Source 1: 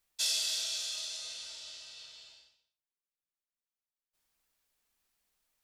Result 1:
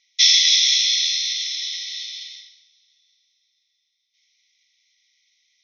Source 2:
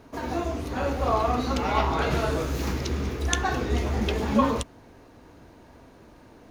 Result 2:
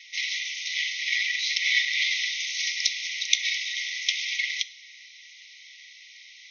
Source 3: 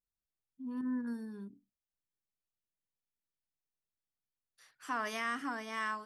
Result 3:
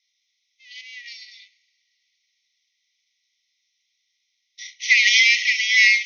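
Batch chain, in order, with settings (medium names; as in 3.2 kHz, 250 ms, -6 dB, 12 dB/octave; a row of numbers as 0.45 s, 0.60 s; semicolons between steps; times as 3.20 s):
comb filter that takes the minimum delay 0.55 ms; compression, threshold -29 dBFS; brick-wall FIR band-pass 1.9–6.6 kHz; two-slope reverb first 0.46 s, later 4.6 s, from -22 dB, DRR 14 dB; peak normalisation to -2 dBFS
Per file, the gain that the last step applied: +21.5 dB, +18.0 dB, +30.0 dB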